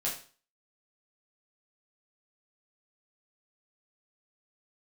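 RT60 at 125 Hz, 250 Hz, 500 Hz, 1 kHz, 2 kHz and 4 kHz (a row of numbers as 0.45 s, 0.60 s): 0.45 s, 0.40 s, 0.40 s, 0.40 s, 0.40 s, 0.40 s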